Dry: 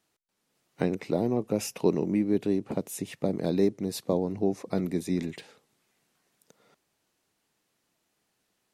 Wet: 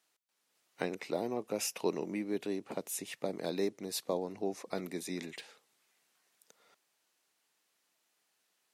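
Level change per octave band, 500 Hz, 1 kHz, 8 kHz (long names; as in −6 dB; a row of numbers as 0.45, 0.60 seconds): −7.5, −3.5, 0.0 decibels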